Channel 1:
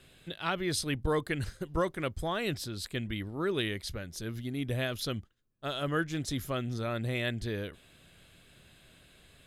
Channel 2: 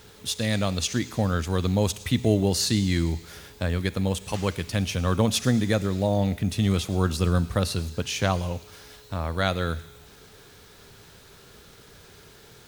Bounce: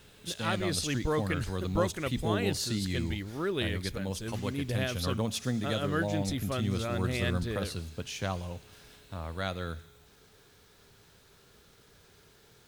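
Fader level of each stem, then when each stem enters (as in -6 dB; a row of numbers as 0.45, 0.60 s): -0.5, -9.5 dB; 0.00, 0.00 s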